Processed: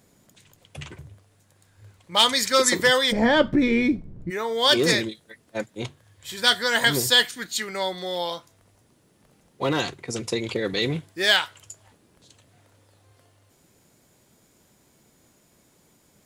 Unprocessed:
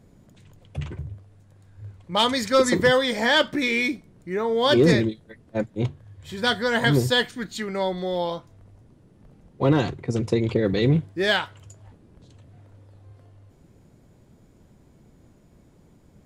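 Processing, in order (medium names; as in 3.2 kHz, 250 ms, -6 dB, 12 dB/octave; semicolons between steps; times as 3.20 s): tilt EQ +3 dB/octave, from 3.11 s -3.5 dB/octave, from 4.29 s +3.5 dB/octave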